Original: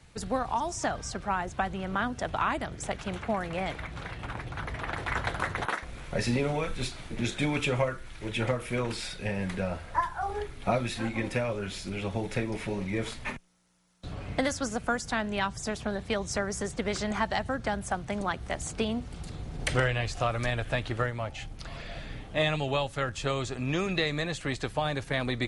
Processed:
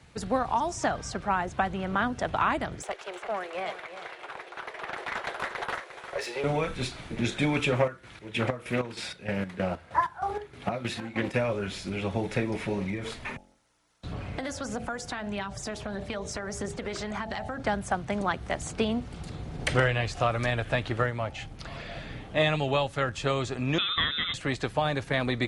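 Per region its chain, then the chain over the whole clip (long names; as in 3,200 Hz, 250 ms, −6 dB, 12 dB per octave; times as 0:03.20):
0:02.82–0:06.44: Chebyshev high-pass filter 360 Hz, order 5 + tube saturation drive 26 dB, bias 0.55 + single-tap delay 353 ms −11 dB
0:07.72–0:11.34: high-pass filter 78 Hz + square-wave tremolo 3.2 Hz, depth 65% + highs frequency-modulated by the lows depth 0.26 ms
0:12.90–0:17.63: hum removal 45.09 Hz, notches 19 + downward compressor, threshold −32 dBFS + phase shifter 1.6 Hz, delay 3.2 ms, feedback 28%
0:23.78–0:24.34: high-pass filter 140 Hz + voice inversion scrambler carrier 3,800 Hz
whole clip: high-pass filter 74 Hz 6 dB per octave; high-shelf EQ 5,400 Hz −6.5 dB; level +3 dB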